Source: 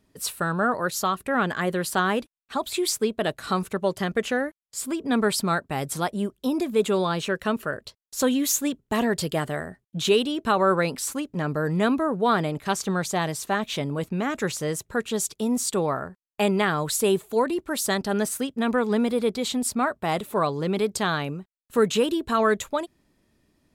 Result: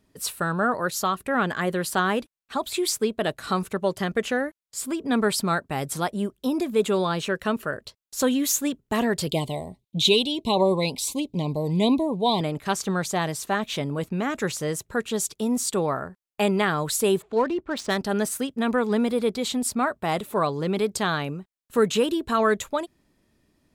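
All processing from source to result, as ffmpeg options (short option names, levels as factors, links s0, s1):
-filter_complex "[0:a]asettb=1/sr,asplit=3[s0][s1][s2];[s0]atrim=end=9.274[s3];[s1]atrim=start=9.27:end=12.41,asetpts=PTS-STARTPTS,afade=t=in:d=0.004:c=qsin,afade=t=out:st=3.136:d=0.004:c=qsin,equalizer=f=3800:w=3.1:g=10,aphaser=in_gain=1:out_gain=1:delay=1.4:decay=0.28:speed=1.5:type=triangular,asuperstop=centerf=1500:order=12:qfactor=1.5[s4];[s2]atrim=start=12.406[s5];[s3][s4]acrossfade=d=0.004:c1=hsin:c2=qsin[s6];[s6][s5]acrossfade=d=0.004:c1=qsin:c2=hsin,asettb=1/sr,asplit=3[s7][s8][s9];[s7]atrim=end=17.224[s10];[s8]atrim=start=17.22:end=17.97,asetpts=PTS-STARTPTS,afade=t=in:d=0.004:c=qsin,afade=t=out:st=0.746:d=0.004:c=qsin,lowpass=7000,adynamicsmooth=sensitivity=5.5:basefreq=2400[s11];[s9]atrim=start=17.966[s12];[s10][s11]acrossfade=d=0.004:c1=hsin:c2=qsin[s13];[s13][s12]acrossfade=d=0.004:c1=qsin:c2=hsin"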